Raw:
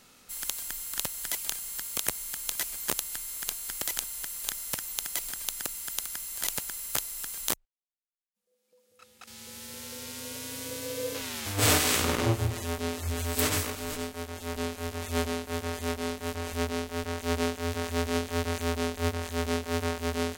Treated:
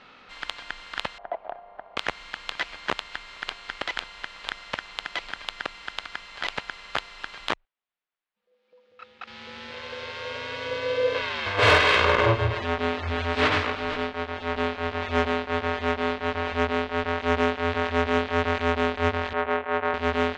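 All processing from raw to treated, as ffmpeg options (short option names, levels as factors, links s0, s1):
-filter_complex "[0:a]asettb=1/sr,asplit=3[s0][s1][s2];[s0]atrim=end=1.184[s3];[s1]atrim=start=1.18:end=1.97,asetpts=PTS-STARTPTS,afade=t=in:d=0.004:c=qsin,afade=t=out:st=0.786:d=0.004:c=qsin,lowpass=f=680:t=q:w=7.2,lowshelf=f=490:g=-9.5[s4];[s2]atrim=start=1.966[s5];[s3][s4]acrossfade=d=0.004:c1=hsin:c2=qsin[s6];[s6][s5]acrossfade=d=0.004:c1=qsin:c2=hsin,asettb=1/sr,asplit=3[s7][s8][s9];[s7]atrim=end=9.714[s10];[s8]atrim=start=9.71:end=12.59,asetpts=PTS-STARTPTS,afade=t=in:d=0.004:c=qsin,afade=t=out:st=2.876:d=0.004:c=qsin,bandreject=f=50:t=h:w=6,bandreject=f=100:t=h:w=6,bandreject=f=150:t=h:w=6,bandreject=f=200:t=h:w=6,bandreject=f=250:t=h:w=6,bandreject=f=300:t=h:w=6,aecho=1:1:1.9:0.52,atrim=end_sample=127008,aeval=exprs='val(0)*gte(abs(val(0)),0.00841)':c=same[s11];[s9]atrim=start=12.586[s12];[s10][s11]acrossfade=d=0.004:c1=hsin:c2=qsin[s13];[s13][s12]acrossfade=d=0.004:c1=qsin:c2=hsin,asettb=1/sr,asplit=3[s14][s15][s16];[s14]atrim=end=19.334[s17];[s15]atrim=start=19.33:end=19.94,asetpts=PTS-STARTPTS,afade=t=in:d=0.004:c=qsin,afade=t=out:st=0.606:d=0.004:c=qsin,lowpass=f=3500:w=0.5412,lowpass=f=3500:w=1.3066,acrossover=split=360 2400:gain=0.251 1 0.178[s18][s19][s20];[s18][s19][s20]amix=inputs=3:normalize=0,acrusher=bits=8:mode=log:mix=0:aa=0.000001[s21];[s16]atrim=start=19.936[s22];[s17][s21]acrossfade=d=0.004:c1=hsin:c2=qsin[s23];[s23][s22]acrossfade=d=0.004:c1=qsin:c2=hsin,lowpass=f=3900:w=0.5412,lowpass=f=3900:w=1.3066,equalizer=f=1300:w=0.33:g=11,acontrast=71,volume=0.501"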